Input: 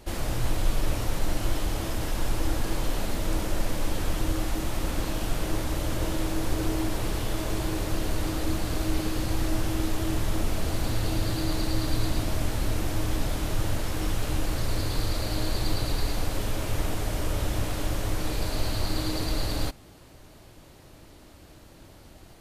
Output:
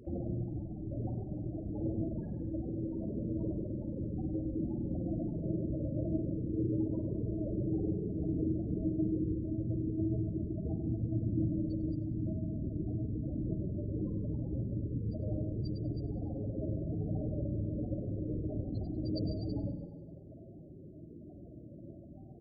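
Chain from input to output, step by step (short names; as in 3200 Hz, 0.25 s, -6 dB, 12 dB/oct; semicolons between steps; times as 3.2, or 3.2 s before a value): formant sharpening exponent 1.5; compressor 4:1, threshold -27 dBFS, peak gain reduction 9 dB; on a send: echo 0.142 s -4.5 dB; on the sum: loudest bins only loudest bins 16; HPF 120 Hz 12 dB/oct; spring tank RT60 1.1 s, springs 49 ms, chirp 50 ms, DRR 6.5 dB; gain +3.5 dB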